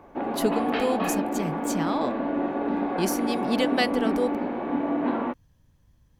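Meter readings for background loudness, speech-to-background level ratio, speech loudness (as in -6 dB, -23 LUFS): -27.5 LUFS, -1.5 dB, -29.0 LUFS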